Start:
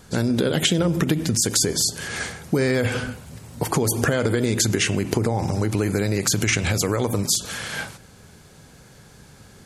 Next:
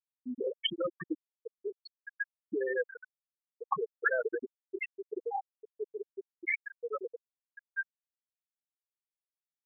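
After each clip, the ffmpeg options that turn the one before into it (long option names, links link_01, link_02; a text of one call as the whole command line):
ffmpeg -i in.wav -af "bandpass=frequency=1300:width_type=q:width=0.77:csg=0,afftfilt=real='re*gte(hypot(re,im),0.251)':imag='im*gte(hypot(re,im),0.251)':win_size=1024:overlap=0.75" out.wav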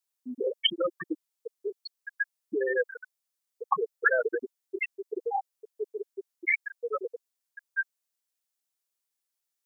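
ffmpeg -i in.wav -af "bass=frequency=250:gain=-10,treble=frequency=4000:gain=7,volume=5.5dB" out.wav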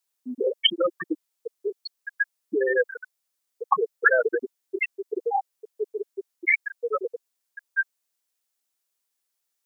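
ffmpeg -i in.wav -af "highpass=180,volume=5dB" out.wav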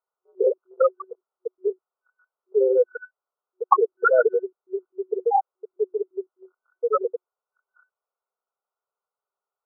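ffmpeg -i in.wav -af "afftfilt=real='re*between(b*sr/4096,370,1500)':imag='im*between(b*sr/4096,370,1500)':win_size=4096:overlap=0.75,volume=5dB" out.wav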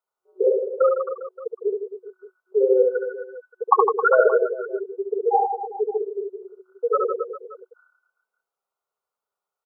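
ffmpeg -i in.wav -af "aecho=1:1:70|157.5|266.9|403.6|574.5:0.631|0.398|0.251|0.158|0.1" out.wav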